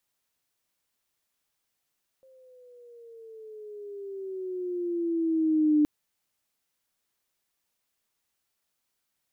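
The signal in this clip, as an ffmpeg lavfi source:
ffmpeg -f lavfi -i "aevalsrc='pow(10,(-17.5+36*(t/3.62-1))/20)*sin(2*PI*530*3.62/(-10*log(2)/12)*(exp(-10*log(2)/12*t/3.62)-1))':duration=3.62:sample_rate=44100" out.wav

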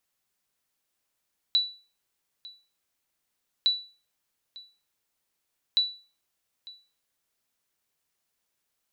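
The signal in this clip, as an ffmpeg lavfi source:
ffmpeg -f lavfi -i "aevalsrc='0.168*(sin(2*PI*3950*mod(t,2.11))*exp(-6.91*mod(t,2.11)/0.36)+0.0841*sin(2*PI*3950*max(mod(t,2.11)-0.9,0))*exp(-6.91*max(mod(t,2.11)-0.9,0)/0.36))':duration=6.33:sample_rate=44100" out.wav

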